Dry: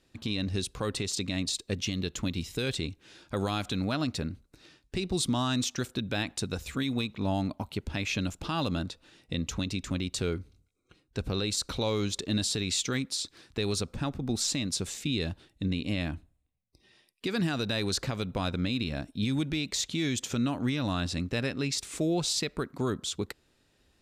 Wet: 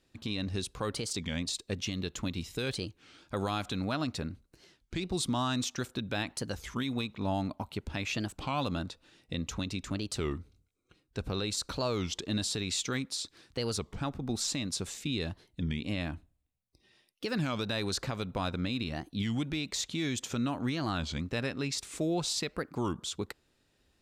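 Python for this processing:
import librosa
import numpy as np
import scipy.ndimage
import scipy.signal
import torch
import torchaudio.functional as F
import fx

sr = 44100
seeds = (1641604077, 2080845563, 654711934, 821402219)

y = fx.dynamic_eq(x, sr, hz=1000.0, q=0.97, threshold_db=-48.0, ratio=4.0, max_db=4)
y = fx.record_warp(y, sr, rpm=33.33, depth_cents=250.0)
y = y * 10.0 ** (-3.5 / 20.0)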